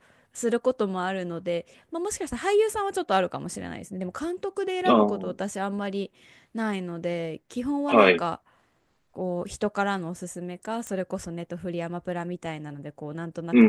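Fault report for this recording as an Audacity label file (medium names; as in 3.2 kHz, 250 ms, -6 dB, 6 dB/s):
10.870000	10.870000	pop -20 dBFS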